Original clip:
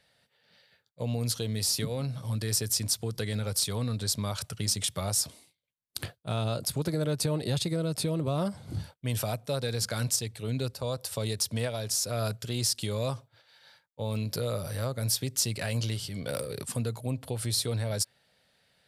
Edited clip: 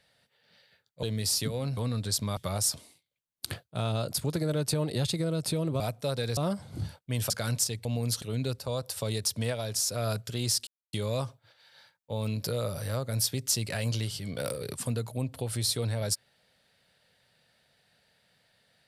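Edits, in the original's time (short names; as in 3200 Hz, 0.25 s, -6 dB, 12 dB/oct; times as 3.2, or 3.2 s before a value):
1.03–1.4 move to 10.37
2.14–3.73 cut
4.33–4.89 cut
9.25–9.82 move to 8.32
12.82 insert silence 0.26 s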